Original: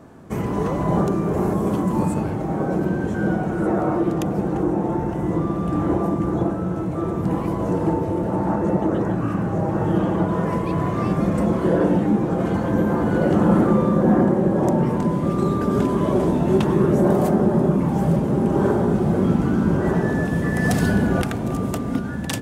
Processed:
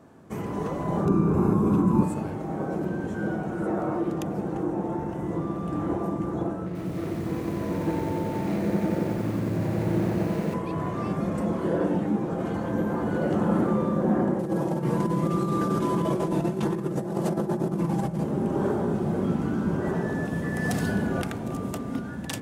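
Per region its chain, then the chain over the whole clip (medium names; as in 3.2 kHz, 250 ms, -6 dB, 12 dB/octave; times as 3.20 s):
1.05–2.03 s: tilt shelf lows +5.5 dB, about 1.5 kHz + comb 0.8 ms, depth 61%
6.66–10.54 s: median filter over 41 samples + band-stop 810 Hz, Q 23 + bit-crushed delay 90 ms, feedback 80%, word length 7-bit, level -5 dB
14.39–18.24 s: CVSD coder 64 kbps + comb 6 ms, depth 68% + compressor with a negative ratio -18 dBFS, ratio -0.5
whole clip: bass shelf 63 Hz -9 dB; de-hum 61.81 Hz, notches 38; trim -6 dB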